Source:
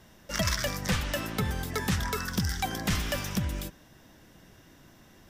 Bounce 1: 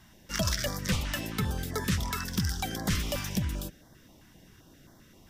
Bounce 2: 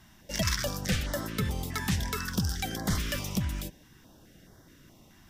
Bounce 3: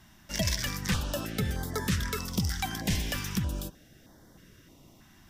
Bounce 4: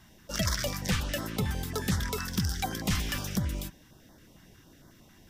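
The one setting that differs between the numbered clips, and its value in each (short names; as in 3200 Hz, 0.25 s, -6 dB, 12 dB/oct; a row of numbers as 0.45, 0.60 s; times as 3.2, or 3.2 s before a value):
stepped notch, rate: 7.6, 4.7, 3.2, 11 Hz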